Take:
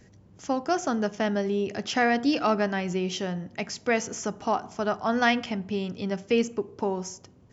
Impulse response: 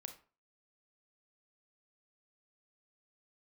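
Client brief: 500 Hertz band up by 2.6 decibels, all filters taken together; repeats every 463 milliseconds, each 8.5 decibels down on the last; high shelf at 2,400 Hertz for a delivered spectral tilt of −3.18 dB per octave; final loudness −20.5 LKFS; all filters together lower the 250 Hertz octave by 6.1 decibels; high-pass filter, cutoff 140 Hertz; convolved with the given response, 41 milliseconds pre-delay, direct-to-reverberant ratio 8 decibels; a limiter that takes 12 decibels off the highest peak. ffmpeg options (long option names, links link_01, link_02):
-filter_complex "[0:a]highpass=140,equalizer=frequency=250:width_type=o:gain=-8.5,equalizer=frequency=500:width_type=o:gain=5.5,highshelf=frequency=2400:gain=3,alimiter=limit=-18dB:level=0:latency=1,aecho=1:1:463|926|1389|1852:0.376|0.143|0.0543|0.0206,asplit=2[link_01][link_02];[1:a]atrim=start_sample=2205,adelay=41[link_03];[link_02][link_03]afir=irnorm=-1:irlink=0,volume=-3.5dB[link_04];[link_01][link_04]amix=inputs=2:normalize=0,volume=8dB"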